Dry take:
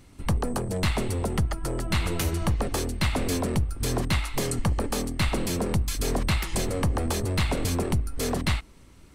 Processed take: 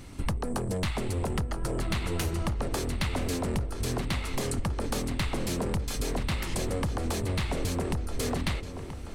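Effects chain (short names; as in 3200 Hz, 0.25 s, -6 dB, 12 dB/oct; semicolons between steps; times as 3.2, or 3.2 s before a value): compressor 10:1, threshold -34 dBFS, peak gain reduction 14 dB; darkening echo 0.98 s, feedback 54%, low-pass 4900 Hz, level -10 dB; Doppler distortion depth 0.2 ms; gain +7 dB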